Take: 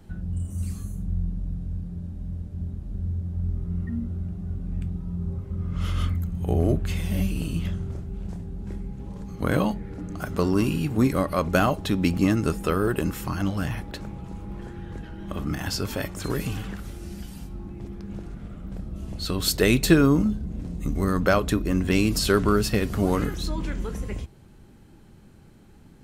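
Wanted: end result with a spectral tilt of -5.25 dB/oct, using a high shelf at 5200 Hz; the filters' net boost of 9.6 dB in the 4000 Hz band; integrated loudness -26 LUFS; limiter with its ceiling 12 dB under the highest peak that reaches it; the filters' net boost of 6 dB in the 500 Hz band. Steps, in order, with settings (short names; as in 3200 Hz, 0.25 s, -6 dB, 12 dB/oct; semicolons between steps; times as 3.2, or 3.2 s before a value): bell 500 Hz +7.5 dB; bell 4000 Hz +9 dB; high shelf 5200 Hz +5 dB; gain +1.5 dB; limiter -13 dBFS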